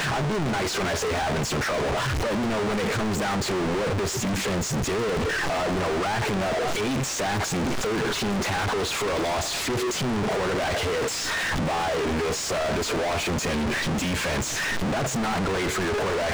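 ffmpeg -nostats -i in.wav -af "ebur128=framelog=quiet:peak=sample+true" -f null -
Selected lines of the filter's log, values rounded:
Integrated loudness:
  I:         -25.4 LUFS
  Threshold: -35.4 LUFS
Loudness range:
  LRA:         0.2 LU
  Threshold: -45.4 LUFS
  LRA low:   -25.5 LUFS
  LRA high:  -25.3 LUFS
Sample peak:
  Peak:      -23.9 dBFS
True peak:
  Peak:      -22.9 dBFS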